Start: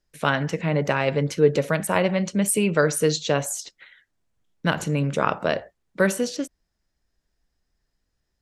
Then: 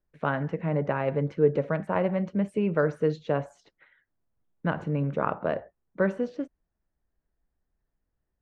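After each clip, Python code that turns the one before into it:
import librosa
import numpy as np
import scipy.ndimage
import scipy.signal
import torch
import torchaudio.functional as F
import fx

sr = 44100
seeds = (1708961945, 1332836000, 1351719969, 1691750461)

y = scipy.signal.sosfilt(scipy.signal.butter(2, 1400.0, 'lowpass', fs=sr, output='sos'), x)
y = y * 10.0 ** (-4.0 / 20.0)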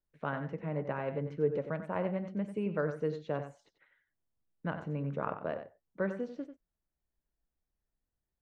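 y = x + 10.0 ** (-10.0 / 20.0) * np.pad(x, (int(93 * sr / 1000.0), 0))[:len(x)]
y = y * 10.0 ** (-8.5 / 20.0)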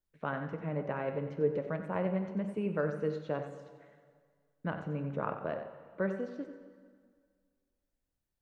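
y = fx.rev_plate(x, sr, seeds[0], rt60_s=1.9, hf_ratio=0.9, predelay_ms=0, drr_db=9.5)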